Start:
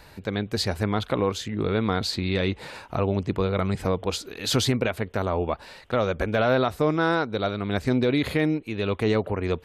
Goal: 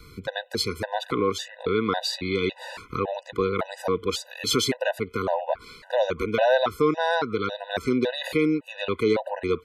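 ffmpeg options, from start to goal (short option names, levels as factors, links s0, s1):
-filter_complex "[0:a]acrossover=split=250|1200|1700[s0][s1][s2][s3];[s0]acompressor=threshold=0.01:ratio=6[s4];[s2]aecho=1:1:674:0.251[s5];[s4][s1][s5][s3]amix=inputs=4:normalize=0,afftfilt=real='re*gt(sin(2*PI*1.8*pts/sr)*(1-2*mod(floor(b*sr/1024/500),2)),0)':imag='im*gt(sin(2*PI*1.8*pts/sr)*(1-2*mod(floor(b*sr/1024/500),2)),0)':win_size=1024:overlap=0.75,volume=1.58"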